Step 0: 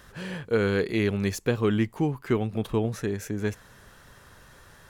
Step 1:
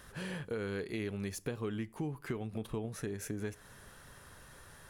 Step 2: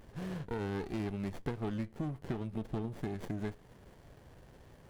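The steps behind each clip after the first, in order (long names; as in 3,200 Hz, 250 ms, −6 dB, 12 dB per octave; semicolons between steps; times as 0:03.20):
parametric band 10,000 Hz +8.5 dB 0.33 octaves; downward compressor 5 to 1, threshold −32 dBFS, peak gain reduction 12 dB; on a send at −18 dB: convolution reverb RT60 0.40 s, pre-delay 7 ms; on the sum: level −3.5 dB
windowed peak hold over 33 samples; level +1 dB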